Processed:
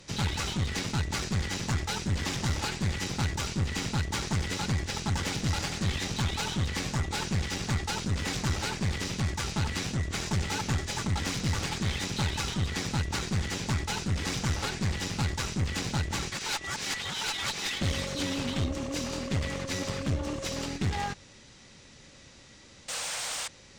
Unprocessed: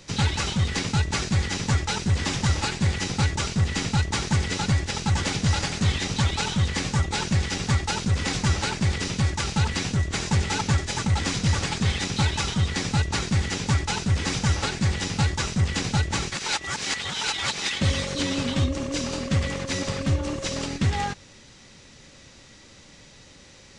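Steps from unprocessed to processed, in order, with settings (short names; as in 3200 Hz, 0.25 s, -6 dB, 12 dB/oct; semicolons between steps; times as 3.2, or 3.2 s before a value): painted sound noise, 22.88–23.48, 460–9400 Hz -30 dBFS; one-sided clip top -28.5 dBFS; gain -3.5 dB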